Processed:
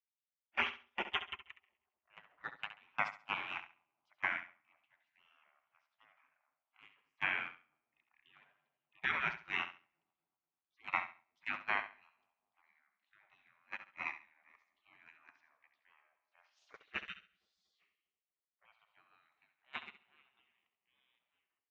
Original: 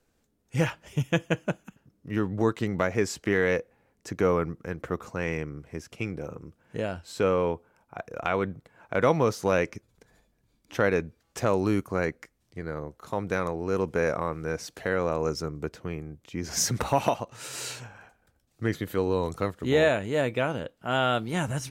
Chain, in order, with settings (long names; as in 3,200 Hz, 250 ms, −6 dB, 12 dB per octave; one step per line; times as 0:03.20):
fade-out on the ending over 4.52 s
low-pass filter 2,200 Hz 24 dB per octave
gate on every frequency bin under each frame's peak −30 dB weak
high-pass filter 97 Hz 12 dB per octave
low-shelf EQ 190 Hz −3 dB
echo with a time of its own for lows and highs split 900 Hz, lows 241 ms, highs 84 ms, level −12 dB
noise gate −49 dBFS, range −25 dB
parametric band 510 Hz −3.5 dB 0.66 octaves
on a send: repeating echo 68 ms, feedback 24%, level −11.5 dB
on the sum: level +13.5 dB